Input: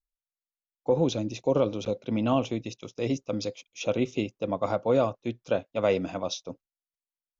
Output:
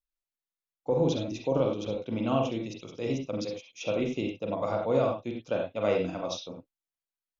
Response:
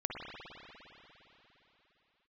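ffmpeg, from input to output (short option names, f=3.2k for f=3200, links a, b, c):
-filter_complex "[1:a]atrim=start_sample=2205,atrim=end_sample=6174,asetrate=57330,aresample=44100[a];[0:a][a]afir=irnorm=-1:irlink=0"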